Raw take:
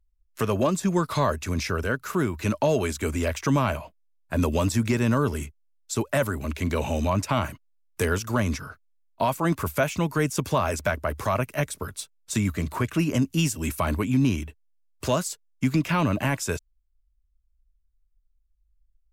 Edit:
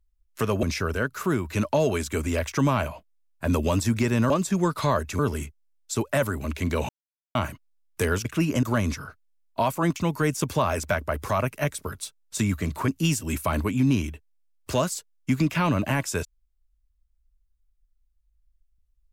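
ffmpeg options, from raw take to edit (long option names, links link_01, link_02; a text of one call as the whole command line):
ffmpeg -i in.wav -filter_complex "[0:a]asplit=10[link_01][link_02][link_03][link_04][link_05][link_06][link_07][link_08][link_09][link_10];[link_01]atrim=end=0.632[link_11];[link_02]atrim=start=1.518:end=5.192[link_12];[link_03]atrim=start=0.628:end=1.522[link_13];[link_04]atrim=start=5.188:end=6.89,asetpts=PTS-STARTPTS,afade=type=out:start_time=1.698:duration=0.004:curve=hsin[link_14];[link_05]atrim=start=6.89:end=7.35,asetpts=PTS-STARTPTS,volume=0[link_15];[link_06]atrim=start=7.35:end=8.252,asetpts=PTS-STARTPTS,afade=type=in:duration=0.004:curve=hsin[link_16];[link_07]atrim=start=12.838:end=13.222[link_17];[link_08]atrim=start=8.248:end=9.582[link_18];[link_09]atrim=start=9.918:end=12.842[link_19];[link_10]atrim=start=13.218[link_20];[link_11][link_12]acrossfade=duration=0.004:curve1=hsin:curve2=hsin[link_21];[link_21][link_13]acrossfade=duration=0.004:curve1=hsin:curve2=hsin[link_22];[link_14][link_15][link_16]concat=n=3:v=0:a=1[link_23];[link_22][link_23]acrossfade=duration=0.004:curve1=hsin:curve2=hsin[link_24];[link_24][link_17]acrossfade=duration=0.004:curve1=hsin:curve2=hsin[link_25];[link_25][link_18]acrossfade=duration=0.004:curve1=hsin:curve2=hsin[link_26];[link_26][link_19]acrossfade=duration=0.004:curve1=hsin:curve2=hsin[link_27];[link_27][link_20]acrossfade=duration=0.004:curve1=hsin:curve2=hsin" out.wav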